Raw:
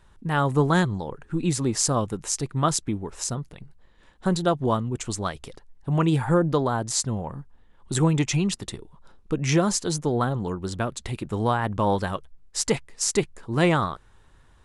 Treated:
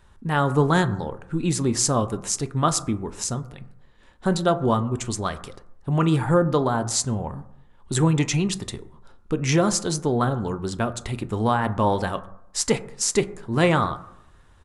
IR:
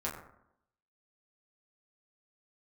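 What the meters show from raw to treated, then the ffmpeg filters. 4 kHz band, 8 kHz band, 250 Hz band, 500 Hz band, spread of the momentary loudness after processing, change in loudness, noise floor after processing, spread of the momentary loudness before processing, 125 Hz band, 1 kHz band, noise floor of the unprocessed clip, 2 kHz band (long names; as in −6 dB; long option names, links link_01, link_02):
+1.5 dB, +1.5 dB, +1.5 dB, +2.0 dB, 11 LU, +1.5 dB, −53 dBFS, 11 LU, +1.5 dB, +2.0 dB, −55 dBFS, +1.5 dB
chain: -filter_complex "[0:a]asplit=2[link_01][link_02];[1:a]atrim=start_sample=2205[link_03];[link_02][link_03]afir=irnorm=-1:irlink=0,volume=-11.5dB[link_04];[link_01][link_04]amix=inputs=2:normalize=0,aresample=32000,aresample=44100"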